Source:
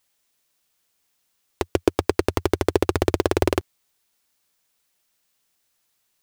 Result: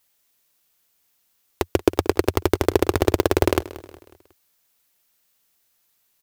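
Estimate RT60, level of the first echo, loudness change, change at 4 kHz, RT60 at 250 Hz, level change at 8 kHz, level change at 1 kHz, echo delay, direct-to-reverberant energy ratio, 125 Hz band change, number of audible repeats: no reverb, -17.5 dB, +1.5 dB, +1.5 dB, no reverb, +2.0 dB, +1.5 dB, 182 ms, no reverb, +1.5 dB, 3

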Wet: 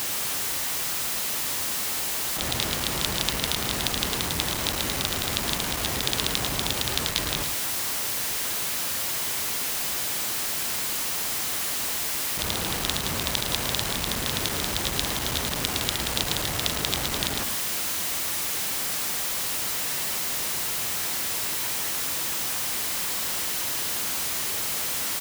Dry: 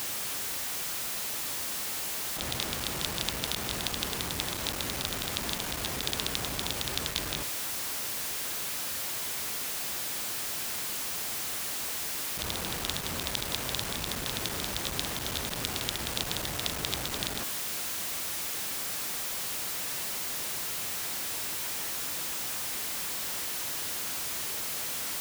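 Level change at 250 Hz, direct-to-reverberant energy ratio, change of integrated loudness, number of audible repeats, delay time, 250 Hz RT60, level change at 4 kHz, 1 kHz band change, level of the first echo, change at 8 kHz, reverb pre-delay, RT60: +6.0 dB, no reverb, +6.0 dB, 1, 110 ms, no reverb, +6.0 dB, +6.0 dB, -9.0 dB, +6.0 dB, no reverb, no reverb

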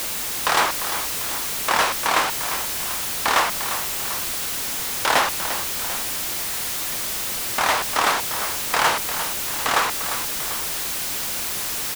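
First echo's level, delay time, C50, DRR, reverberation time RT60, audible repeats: -10.5 dB, 349 ms, no reverb, no reverb, no reverb, 2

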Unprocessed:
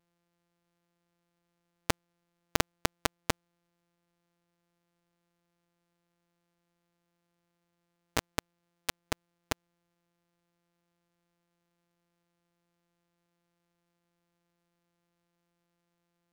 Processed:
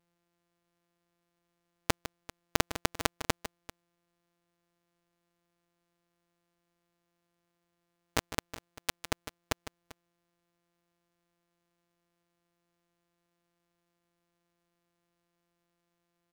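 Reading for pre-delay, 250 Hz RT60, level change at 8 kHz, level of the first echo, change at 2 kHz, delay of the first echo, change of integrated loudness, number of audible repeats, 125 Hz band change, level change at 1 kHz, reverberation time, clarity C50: no reverb, no reverb, +0.5 dB, -12.0 dB, +0.5 dB, 154 ms, 0.0 dB, 2, +0.5 dB, +0.5 dB, no reverb, no reverb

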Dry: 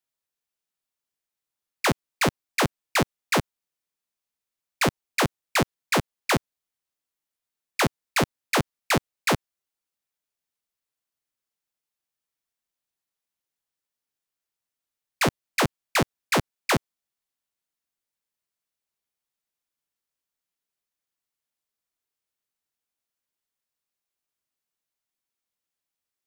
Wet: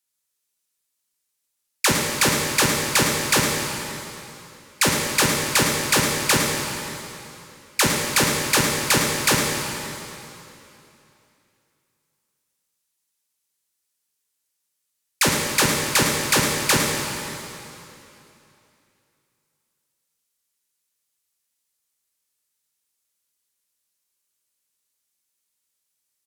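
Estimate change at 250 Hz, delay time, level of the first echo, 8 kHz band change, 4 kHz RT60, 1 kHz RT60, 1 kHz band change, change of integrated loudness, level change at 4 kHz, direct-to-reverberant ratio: +3.5 dB, 107 ms, -10.0 dB, +13.5 dB, 2.7 s, 2.9 s, +3.0 dB, +6.0 dB, +9.0 dB, -0.5 dB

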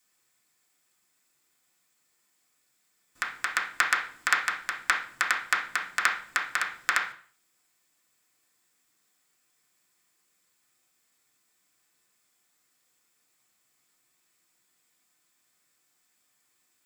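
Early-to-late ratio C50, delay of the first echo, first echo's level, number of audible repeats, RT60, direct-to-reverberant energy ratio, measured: 7.5 dB, no echo, no echo, no echo, 0.45 s, -4.0 dB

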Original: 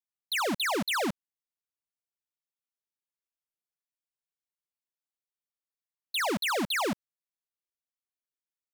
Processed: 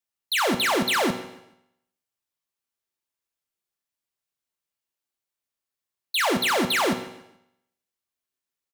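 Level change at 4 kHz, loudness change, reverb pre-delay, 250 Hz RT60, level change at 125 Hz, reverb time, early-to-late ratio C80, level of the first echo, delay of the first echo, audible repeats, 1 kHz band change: +6.5 dB, +6.5 dB, 3 ms, 0.85 s, +6.0 dB, 0.80 s, 12.0 dB, -19.5 dB, 143 ms, 2, +6.5 dB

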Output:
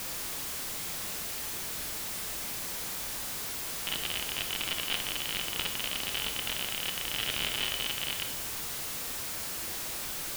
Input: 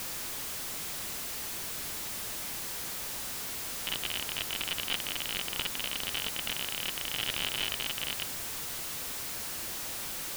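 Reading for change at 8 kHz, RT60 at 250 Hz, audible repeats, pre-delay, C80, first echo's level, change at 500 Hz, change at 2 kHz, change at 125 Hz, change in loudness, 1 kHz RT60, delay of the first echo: +1.0 dB, 1.0 s, no echo, 22 ms, 11.0 dB, no echo, +1.5 dB, +1.0 dB, +1.5 dB, +1.0 dB, 0.80 s, no echo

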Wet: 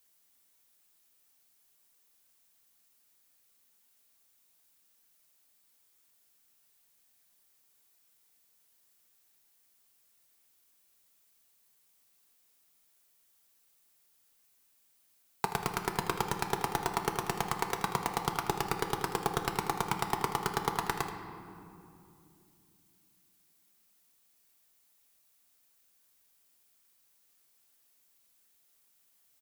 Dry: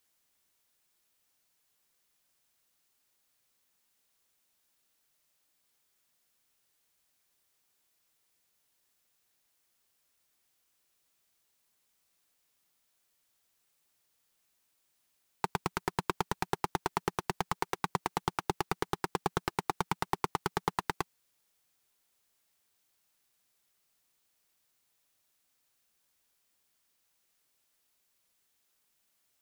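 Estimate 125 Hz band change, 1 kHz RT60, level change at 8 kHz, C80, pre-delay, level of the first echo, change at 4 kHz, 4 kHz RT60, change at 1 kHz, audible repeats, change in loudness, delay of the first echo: +1.0 dB, 2.5 s, +5.0 dB, 8.0 dB, 4 ms, -13.0 dB, +2.5 dB, 1.5 s, +1.5 dB, 1, +1.5 dB, 79 ms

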